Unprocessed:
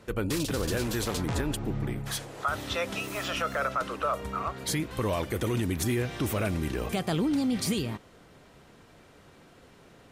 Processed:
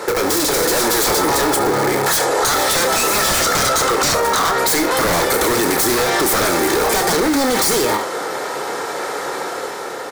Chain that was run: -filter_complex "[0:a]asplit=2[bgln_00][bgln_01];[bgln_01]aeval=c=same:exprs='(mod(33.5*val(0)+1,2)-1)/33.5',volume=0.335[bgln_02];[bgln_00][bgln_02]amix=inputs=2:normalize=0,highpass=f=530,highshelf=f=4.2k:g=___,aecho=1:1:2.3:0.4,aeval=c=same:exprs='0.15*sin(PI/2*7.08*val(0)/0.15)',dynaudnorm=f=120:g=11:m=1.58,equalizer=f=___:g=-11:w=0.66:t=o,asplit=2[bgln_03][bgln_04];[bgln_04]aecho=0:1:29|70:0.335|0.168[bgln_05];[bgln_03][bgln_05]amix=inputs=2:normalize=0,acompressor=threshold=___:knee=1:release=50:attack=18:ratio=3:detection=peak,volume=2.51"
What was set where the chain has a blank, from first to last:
-3, 2.8k, 0.0447